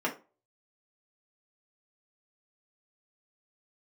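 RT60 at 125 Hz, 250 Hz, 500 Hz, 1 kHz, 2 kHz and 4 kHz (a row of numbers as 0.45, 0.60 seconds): 0.30, 0.35, 0.35, 0.30, 0.25, 0.20 seconds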